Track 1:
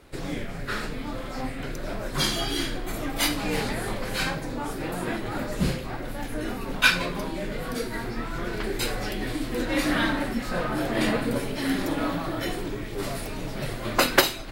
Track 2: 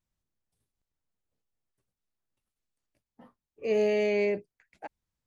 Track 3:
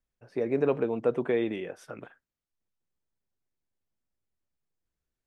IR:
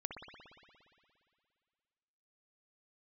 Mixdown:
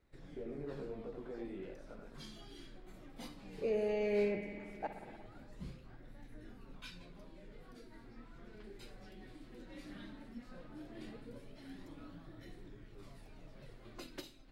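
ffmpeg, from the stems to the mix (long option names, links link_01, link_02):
-filter_complex "[0:a]acrossover=split=420|3000[link_01][link_02][link_03];[link_02]acompressor=threshold=-41dB:ratio=2.5[link_04];[link_01][link_04][link_03]amix=inputs=3:normalize=0,flanger=delay=0.5:depth=4.9:regen=59:speed=0.16:shape=sinusoidal,volume=-18dB[link_05];[1:a]alimiter=level_in=1.5dB:limit=-24dB:level=0:latency=1,volume=-1.5dB,volume=1dB,asplit=2[link_06][link_07];[link_07]volume=-4dB[link_08];[2:a]alimiter=level_in=0.5dB:limit=-24dB:level=0:latency=1,volume=-0.5dB,flanger=delay=19:depth=2.1:speed=0.96,volume=-9dB,asplit=2[link_09][link_10];[link_10]volume=-6dB[link_11];[link_06][link_09]amix=inputs=2:normalize=0,equalizer=frequency=2300:width=1.3:gain=-11.5,acompressor=threshold=-39dB:ratio=6,volume=0dB[link_12];[3:a]atrim=start_sample=2205[link_13];[link_08][link_13]afir=irnorm=-1:irlink=0[link_14];[link_11]aecho=0:1:86:1[link_15];[link_05][link_12][link_14][link_15]amix=inputs=4:normalize=0,aemphasis=mode=reproduction:type=50kf"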